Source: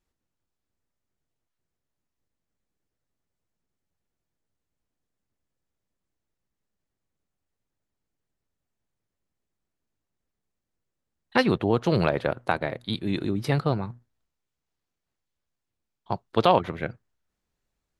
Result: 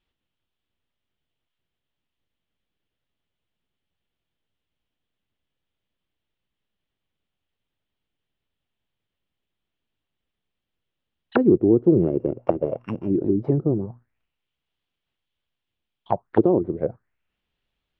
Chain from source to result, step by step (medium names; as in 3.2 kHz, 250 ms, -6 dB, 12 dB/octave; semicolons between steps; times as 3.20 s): 11.97–13.10 s: sorted samples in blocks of 16 samples; touch-sensitive low-pass 350–3200 Hz down, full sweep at -22 dBFS